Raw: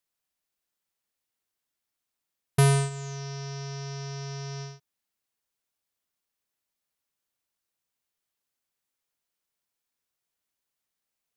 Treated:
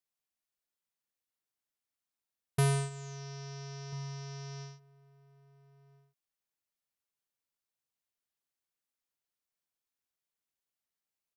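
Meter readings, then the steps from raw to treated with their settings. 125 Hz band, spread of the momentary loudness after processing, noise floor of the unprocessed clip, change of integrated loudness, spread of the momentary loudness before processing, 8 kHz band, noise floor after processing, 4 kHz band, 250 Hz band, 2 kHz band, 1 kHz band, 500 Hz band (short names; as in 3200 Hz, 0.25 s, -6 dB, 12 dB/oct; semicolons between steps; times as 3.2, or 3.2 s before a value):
-7.5 dB, 15 LU, under -85 dBFS, -7.5 dB, 15 LU, -7.5 dB, under -85 dBFS, -7.5 dB, -7.5 dB, -7.5 dB, -7.5 dB, -7.5 dB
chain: outdoor echo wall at 230 m, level -18 dB; gain -7.5 dB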